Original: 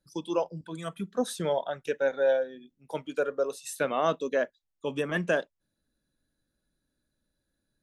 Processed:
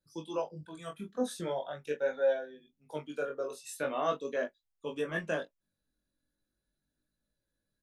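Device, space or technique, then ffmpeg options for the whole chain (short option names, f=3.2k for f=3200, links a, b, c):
double-tracked vocal: -filter_complex "[0:a]asplit=2[a][b];[b]adelay=20,volume=-7dB[c];[a][c]amix=inputs=2:normalize=0,flanger=delay=18:depth=5.5:speed=0.4,volume=-3.5dB"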